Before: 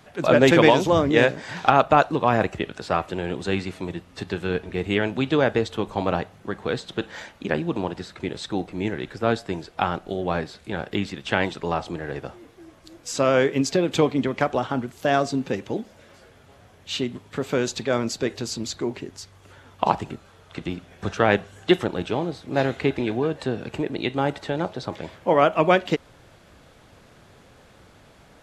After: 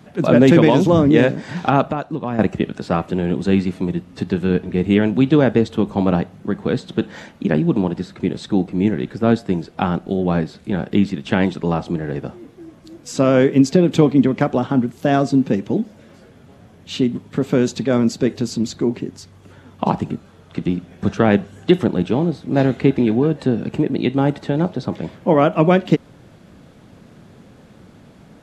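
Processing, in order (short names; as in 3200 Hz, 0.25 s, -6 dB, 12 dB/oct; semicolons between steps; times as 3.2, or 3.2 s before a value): bell 200 Hz +13.5 dB 1.9 oct; 1.85–2.39 compressor 2:1, threshold -27 dBFS, peak gain reduction 11.5 dB; maximiser +0.5 dB; gain -1 dB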